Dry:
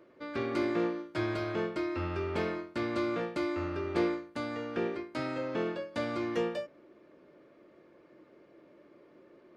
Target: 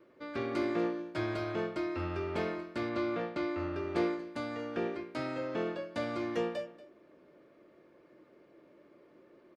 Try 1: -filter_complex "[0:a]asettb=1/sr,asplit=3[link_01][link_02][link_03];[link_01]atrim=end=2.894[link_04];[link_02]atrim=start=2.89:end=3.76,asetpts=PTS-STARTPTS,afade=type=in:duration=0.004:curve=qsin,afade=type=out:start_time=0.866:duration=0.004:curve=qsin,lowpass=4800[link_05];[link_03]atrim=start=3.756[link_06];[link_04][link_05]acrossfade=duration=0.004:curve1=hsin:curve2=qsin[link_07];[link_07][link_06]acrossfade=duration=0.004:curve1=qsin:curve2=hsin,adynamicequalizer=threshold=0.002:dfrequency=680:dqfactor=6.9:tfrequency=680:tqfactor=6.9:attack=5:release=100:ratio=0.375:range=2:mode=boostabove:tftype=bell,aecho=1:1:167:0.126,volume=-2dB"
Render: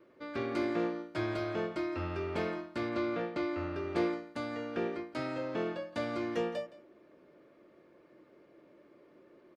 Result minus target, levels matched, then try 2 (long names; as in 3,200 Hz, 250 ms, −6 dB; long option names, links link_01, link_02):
echo 68 ms early
-filter_complex "[0:a]asettb=1/sr,asplit=3[link_01][link_02][link_03];[link_01]atrim=end=2.894[link_04];[link_02]atrim=start=2.89:end=3.76,asetpts=PTS-STARTPTS,afade=type=in:duration=0.004:curve=qsin,afade=type=out:start_time=0.866:duration=0.004:curve=qsin,lowpass=4800[link_05];[link_03]atrim=start=3.756[link_06];[link_04][link_05]acrossfade=duration=0.004:curve1=hsin:curve2=qsin[link_07];[link_07][link_06]acrossfade=duration=0.004:curve1=qsin:curve2=hsin,adynamicequalizer=threshold=0.002:dfrequency=680:dqfactor=6.9:tfrequency=680:tqfactor=6.9:attack=5:release=100:ratio=0.375:range=2:mode=boostabove:tftype=bell,aecho=1:1:235:0.126,volume=-2dB"